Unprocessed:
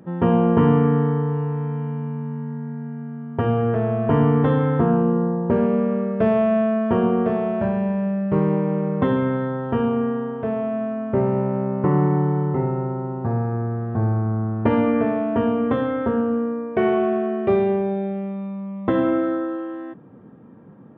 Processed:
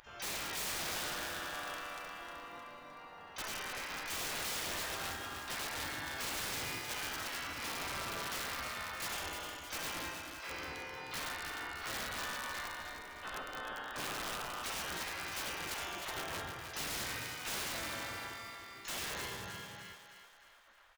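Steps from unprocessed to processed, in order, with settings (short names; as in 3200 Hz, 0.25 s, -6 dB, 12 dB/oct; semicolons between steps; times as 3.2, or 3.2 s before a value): spectral gate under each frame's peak -30 dB weak; harmoniser -12 st -7 dB, -3 st -2 dB, +12 st -6 dB; wrapped overs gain 37.5 dB; on a send: thinning echo 0.308 s, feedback 51%, level -7 dB; on the sum: gain +3.5 dB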